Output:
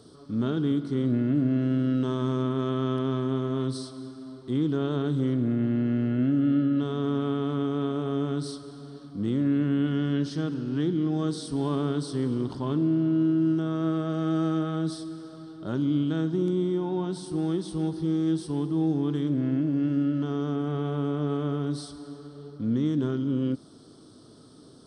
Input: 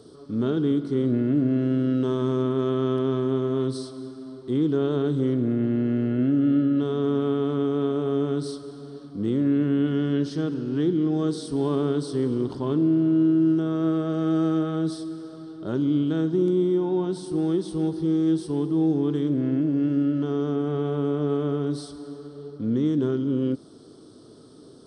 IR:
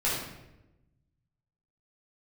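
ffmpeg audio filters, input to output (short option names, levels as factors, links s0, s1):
-af "equalizer=f=410:w=1.6:g=-6.5"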